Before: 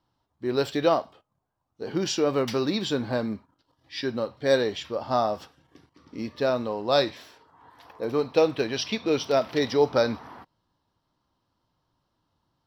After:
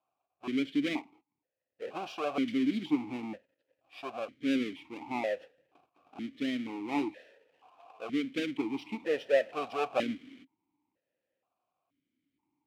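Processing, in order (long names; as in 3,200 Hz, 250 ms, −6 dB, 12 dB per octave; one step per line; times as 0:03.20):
each half-wave held at its own peak
formant filter that steps through the vowels 2.1 Hz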